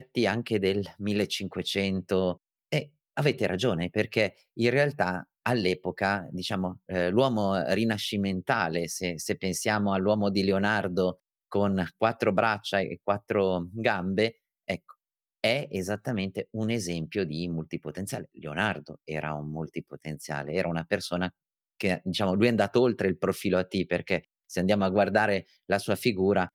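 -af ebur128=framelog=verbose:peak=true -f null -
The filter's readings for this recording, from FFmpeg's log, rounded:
Integrated loudness:
  I:         -28.3 LUFS
  Threshold: -38.4 LUFS
Loudness range:
  LRA:         5.5 LU
  Threshold: -48.6 LUFS
  LRA low:   -32.3 LUFS
  LRA high:  -26.8 LUFS
True peak:
  Peak:      -10.1 dBFS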